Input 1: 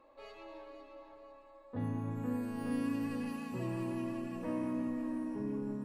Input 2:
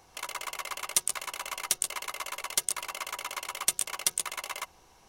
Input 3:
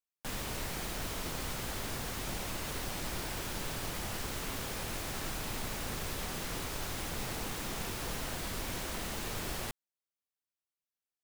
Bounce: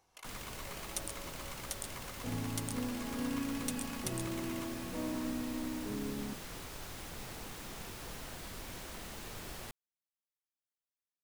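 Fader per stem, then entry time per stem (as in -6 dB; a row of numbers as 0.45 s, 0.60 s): -2.0 dB, -14.0 dB, -7.5 dB; 0.50 s, 0.00 s, 0.00 s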